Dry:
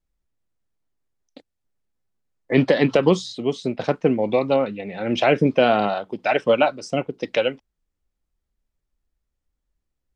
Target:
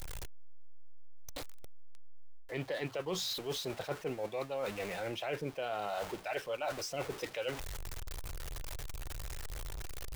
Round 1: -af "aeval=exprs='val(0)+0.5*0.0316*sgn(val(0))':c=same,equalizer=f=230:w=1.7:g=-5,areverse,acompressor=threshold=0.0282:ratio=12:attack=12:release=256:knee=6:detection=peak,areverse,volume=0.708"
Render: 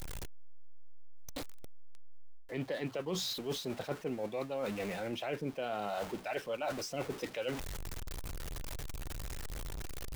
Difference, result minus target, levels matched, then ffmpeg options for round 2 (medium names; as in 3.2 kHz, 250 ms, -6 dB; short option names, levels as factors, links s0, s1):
250 Hz band +4.0 dB
-af "aeval=exprs='val(0)+0.5*0.0316*sgn(val(0))':c=same,equalizer=f=230:w=1.7:g=-16,areverse,acompressor=threshold=0.0282:ratio=12:attack=12:release=256:knee=6:detection=peak,areverse,volume=0.708"